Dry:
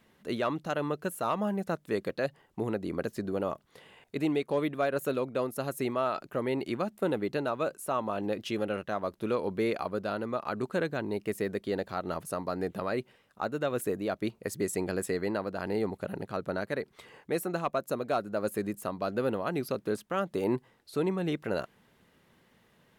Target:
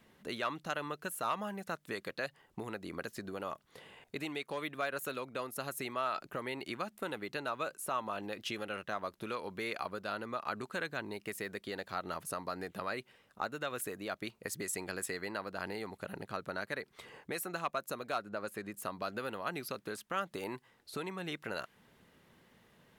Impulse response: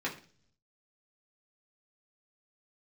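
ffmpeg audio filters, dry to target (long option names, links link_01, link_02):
-filter_complex "[0:a]asettb=1/sr,asplit=3[link_01][link_02][link_03];[link_01]atrim=end=18.184[link_04];[link_02]atrim=start=18.18:end=18.75,asetpts=PTS-STARTPTS,afade=type=in:duration=0.004:curve=qsin,afade=type=out:start_time=0.566:duration=0.004:curve=qsin,highshelf=frequency=5900:gain=-11[link_05];[link_03]atrim=start=18.746[link_06];[link_04][link_05]acrossfade=duration=0.004:curve1=hsin:curve2=qsin[link_07];[link_07][link_06]acrossfade=duration=0.004:curve1=qsin:curve2=hsin,acrossover=split=980[link_08][link_09];[link_08]acompressor=threshold=-41dB:ratio=6[link_10];[link_10][link_09]amix=inputs=2:normalize=0"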